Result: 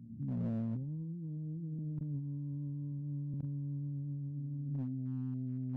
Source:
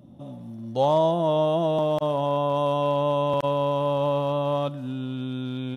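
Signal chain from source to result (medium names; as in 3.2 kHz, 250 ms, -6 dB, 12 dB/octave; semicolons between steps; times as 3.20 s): fade-in on the opening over 0.52 s; inverse Chebyshev low-pass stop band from 620 Hz, stop band 50 dB; compressor with a negative ratio -41 dBFS, ratio -1; reverse echo 421 ms -18.5 dB; overload inside the chain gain 34.5 dB; trim +2.5 dB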